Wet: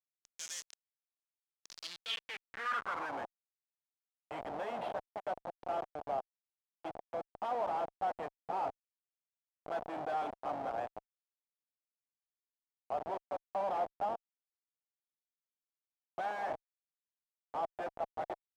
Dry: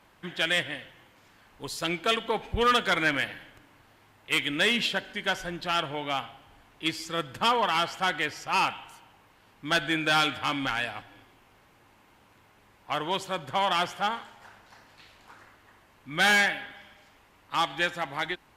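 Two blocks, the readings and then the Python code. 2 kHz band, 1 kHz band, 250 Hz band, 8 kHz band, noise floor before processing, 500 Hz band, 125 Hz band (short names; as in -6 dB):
-20.0 dB, -8.5 dB, -17.0 dB, under -10 dB, -60 dBFS, -7.0 dB, -19.5 dB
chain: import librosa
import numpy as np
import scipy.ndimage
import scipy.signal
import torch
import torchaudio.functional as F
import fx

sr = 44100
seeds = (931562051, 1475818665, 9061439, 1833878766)

y = fx.schmitt(x, sr, flips_db=-28.0)
y = fx.filter_sweep_bandpass(y, sr, from_hz=6300.0, to_hz=710.0, start_s=1.61, end_s=3.26, q=4.0)
y = y * librosa.db_to_amplitude(4.0)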